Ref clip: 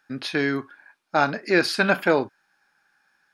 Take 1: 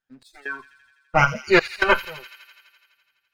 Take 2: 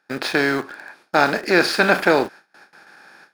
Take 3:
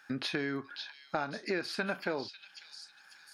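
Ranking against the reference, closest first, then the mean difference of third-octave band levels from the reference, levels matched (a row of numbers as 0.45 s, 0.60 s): 3, 2, 1; 5.0 dB, 7.5 dB, 10.0 dB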